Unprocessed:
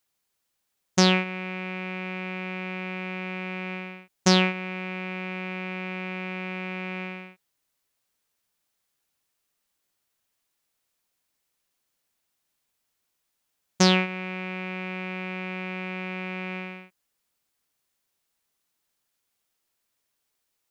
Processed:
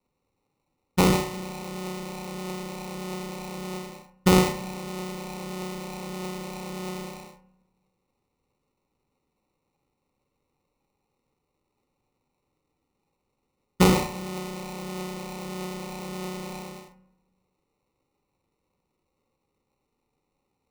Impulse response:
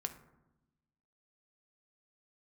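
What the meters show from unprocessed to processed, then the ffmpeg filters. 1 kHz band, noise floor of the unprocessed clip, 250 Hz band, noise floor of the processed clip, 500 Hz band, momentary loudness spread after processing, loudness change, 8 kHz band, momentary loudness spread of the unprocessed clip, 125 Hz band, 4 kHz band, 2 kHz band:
+1.0 dB, −79 dBFS, +0.5 dB, −79 dBFS, +2.0 dB, 15 LU, −1.0 dB, −0.5 dB, 14 LU, +1.0 dB, −5.5 dB, −7.0 dB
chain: -filter_complex "[0:a]adynamicequalizer=threshold=0.0126:dfrequency=2800:dqfactor=0.71:tfrequency=2800:tqfactor=0.71:attack=5:release=100:ratio=0.375:range=3:mode=cutabove:tftype=bell,aphaser=in_gain=1:out_gain=1:delay=1.3:decay=0.38:speed=1.6:type=triangular,acrusher=samples=27:mix=1:aa=0.000001,asuperstop=centerf=660:order=4:qfactor=5,equalizer=frequency=1600:width_type=o:width=0.23:gain=-7,bandreject=frequency=95.57:width_type=h:width=4,bandreject=frequency=191.14:width_type=h:width=4,bandreject=frequency=286.71:width_type=h:width=4,bandreject=frequency=382.28:width_type=h:width=4,bandreject=frequency=477.85:width_type=h:width=4,bandreject=frequency=573.42:width_type=h:width=4,bandreject=frequency=668.99:width_type=h:width=4,bandreject=frequency=764.56:width_type=h:width=4,bandreject=frequency=860.13:width_type=h:width=4,bandreject=frequency=955.7:width_type=h:width=4,bandreject=frequency=1051.27:width_type=h:width=4,bandreject=frequency=1146.84:width_type=h:width=4,bandreject=frequency=1242.41:width_type=h:width=4,bandreject=frequency=1337.98:width_type=h:width=4,bandreject=frequency=1433.55:width_type=h:width=4,bandreject=frequency=1529.12:width_type=h:width=4,bandreject=frequency=1624.69:width_type=h:width=4,bandreject=frequency=1720.26:width_type=h:width=4,bandreject=frequency=1815.83:width_type=h:width=4,bandreject=frequency=1911.4:width_type=h:width=4,bandreject=frequency=2006.97:width_type=h:width=4,bandreject=frequency=2102.54:width_type=h:width=4,bandreject=frequency=2198.11:width_type=h:width=4,bandreject=frequency=2293.68:width_type=h:width=4,bandreject=frequency=2389.25:width_type=h:width=4,bandreject=frequency=2484.82:width_type=h:width=4,bandreject=frequency=2580.39:width_type=h:width=4,bandreject=frequency=2675.96:width_type=h:width=4,bandreject=frequency=2771.53:width_type=h:width=4,bandreject=frequency=2867.1:width_type=h:width=4,bandreject=frequency=2962.67:width_type=h:width=4,bandreject=frequency=3058.24:width_type=h:width=4,bandreject=frequency=3153.81:width_type=h:width=4,bandreject=frequency=3249.38:width_type=h:width=4,bandreject=frequency=3344.95:width_type=h:width=4,bandreject=frequency=3440.52:width_type=h:width=4,asplit=2[link_01][link_02];[1:a]atrim=start_sample=2205,adelay=46[link_03];[link_02][link_03]afir=irnorm=-1:irlink=0,volume=-7.5dB[link_04];[link_01][link_04]amix=inputs=2:normalize=0"

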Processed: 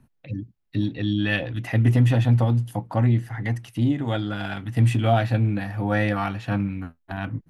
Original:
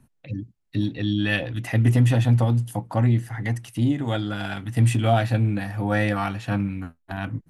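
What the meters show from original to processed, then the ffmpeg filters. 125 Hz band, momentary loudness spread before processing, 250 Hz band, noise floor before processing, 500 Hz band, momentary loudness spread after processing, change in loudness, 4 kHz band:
0.0 dB, 13 LU, 0.0 dB, −70 dBFS, 0.0 dB, 13 LU, 0.0 dB, −1.5 dB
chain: -af "equalizer=frequency=8800:width=0.91:gain=-8"

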